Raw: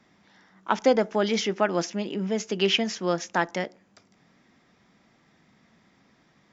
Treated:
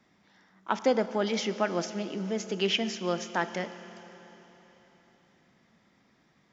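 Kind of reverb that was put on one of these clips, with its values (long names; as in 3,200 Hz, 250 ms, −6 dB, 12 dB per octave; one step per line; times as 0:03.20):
four-comb reverb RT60 3.9 s, combs from 28 ms, DRR 12 dB
level −4.5 dB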